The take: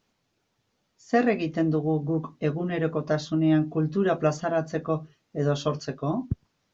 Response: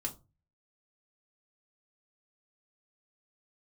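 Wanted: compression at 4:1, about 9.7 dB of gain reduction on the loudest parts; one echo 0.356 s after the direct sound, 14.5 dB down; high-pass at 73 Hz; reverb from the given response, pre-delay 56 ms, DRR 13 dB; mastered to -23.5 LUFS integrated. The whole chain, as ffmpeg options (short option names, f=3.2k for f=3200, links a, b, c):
-filter_complex "[0:a]highpass=73,acompressor=threshold=-29dB:ratio=4,aecho=1:1:356:0.188,asplit=2[a][b];[1:a]atrim=start_sample=2205,adelay=56[c];[b][c]afir=irnorm=-1:irlink=0,volume=-13.5dB[d];[a][d]amix=inputs=2:normalize=0,volume=9.5dB"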